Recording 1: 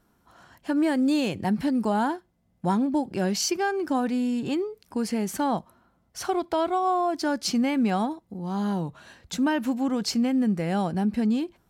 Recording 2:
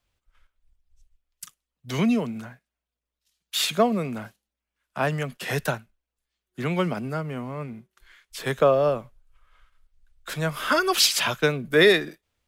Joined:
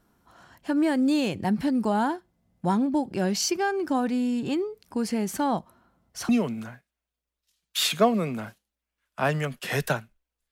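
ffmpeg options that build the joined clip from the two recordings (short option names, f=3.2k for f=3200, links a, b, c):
-filter_complex "[0:a]apad=whole_dur=10.51,atrim=end=10.51,atrim=end=6.292[a];[1:a]atrim=start=2.068:end=6.29[b];[a][b]acrossfade=d=0.004:c1=hsin:c2=hsin"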